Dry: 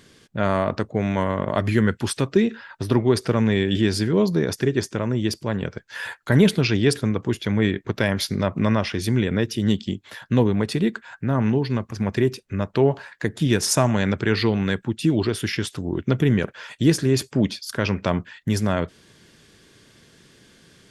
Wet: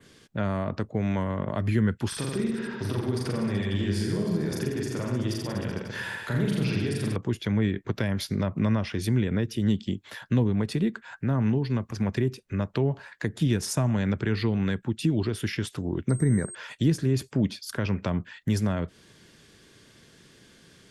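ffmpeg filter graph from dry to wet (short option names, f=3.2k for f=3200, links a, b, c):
-filter_complex "[0:a]asettb=1/sr,asplit=3[a][b][c];[a]atrim=end=2.084[d];[b]atrim=start=2.08:end=7.16,asetpts=PTS-STARTPTS,afade=t=in:d=0.004:c=qsin,afade=t=out:st=5.076:d=0.004:c=qsin,acompressor=threshold=-29dB:ratio=2:attack=3.2:release=140:knee=1:detection=peak,aecho=1:1:40|84|132.4|185.6|244.2|308.6|379.5|457.4|543.2:0.794|0.631|0.501|0.398|0.316|0.251|0.2|0.158|0.126,atrim=end_sample=224028[e];[c]atrim=start=7.156[f];[d][e]acrossfade=d=0.004:c1=hsin:c2=qsin[g];[g][f]acrossfade=d=0.004:c1=qsin:c2=hsin,asettb=1/sr,asplit=3[h][i][j];[h]atrim=end=16.094[k];[i]atrim=start=16.09:end=16.55,asetpts=PTS-STARTPTS,afade=t=in:d=0.004:c=qsin,afade=t=out:st=0.456:d=0.004:c=qsin,aeval=exprs='val(0)+0.0251*sin(2*PI*8400*n/s)':c=same,asuperstop=centerf=2900:order=20:qfactor=1.9,bandreject=f=364.7:t=h:w=4,bandreject=f=729.4:t=h:w=4,bandreject=f=1.0941k:t=h:w=4[l];[j]atrim=start=16.546[m];[k][l]acrossfade=d=0.004:c1=hsin:c2=qsin[n];[n][m]acrossfade=d=0.004:c1=qsin:c2=hsin,adynamicequalizer=threshold=0.00794:dfrequency=5100:dqfactor=1:tfrequency=5100:tqfactor=1:attack=5:release=100:ratio=0.375:range=2:mode=cutabove:tftype=bell,acrossover=split=240[o][p];[p]acompressor=threshold=-29dB:ratio=3[q];[o][q]amix=inputs=2:normalize=0,volume=-2dB"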